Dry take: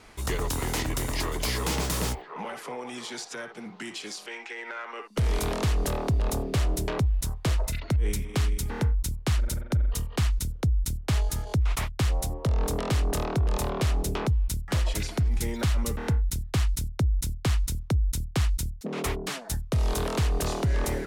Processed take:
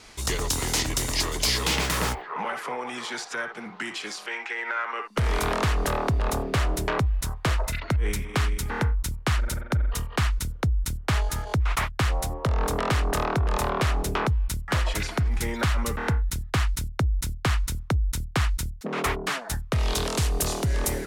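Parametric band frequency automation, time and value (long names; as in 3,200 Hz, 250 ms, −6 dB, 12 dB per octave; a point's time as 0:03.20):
parametric band +9.5 dB 2 octaves
0:01.45 5,600 Hz
0:02.04 1,400 Hz
0:19.68 1,400 Hz
0:20.28 12,000 Hz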